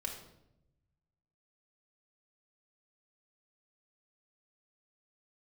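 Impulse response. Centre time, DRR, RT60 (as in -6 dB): 28 ms, 0.0 dB, 0.85 s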